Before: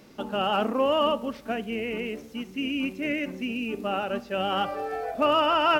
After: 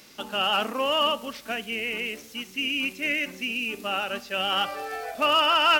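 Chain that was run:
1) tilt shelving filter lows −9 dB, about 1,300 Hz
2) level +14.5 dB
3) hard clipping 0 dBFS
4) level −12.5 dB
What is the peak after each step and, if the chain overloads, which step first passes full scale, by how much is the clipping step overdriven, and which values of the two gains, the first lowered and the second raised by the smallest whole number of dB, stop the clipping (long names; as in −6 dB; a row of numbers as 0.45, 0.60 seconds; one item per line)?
−10.5, +4.0, 0.0, −12.5 dBFS
step 2, 4.0 dB
step 2 +10.5 dB, step 4 −8.5 dB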